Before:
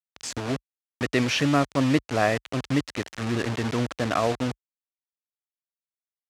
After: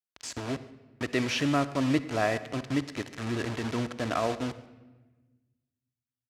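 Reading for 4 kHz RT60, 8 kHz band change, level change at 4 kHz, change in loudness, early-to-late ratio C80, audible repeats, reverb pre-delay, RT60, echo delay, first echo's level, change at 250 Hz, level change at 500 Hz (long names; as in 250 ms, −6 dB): 0.90 s, −5.0 dB, −4.5 dB, −4.5 dB, 15.5 dB, 1, 3 ms, 1.2 s, 142 ms, −23.0 dB, −4.0 dB, −4.5 dB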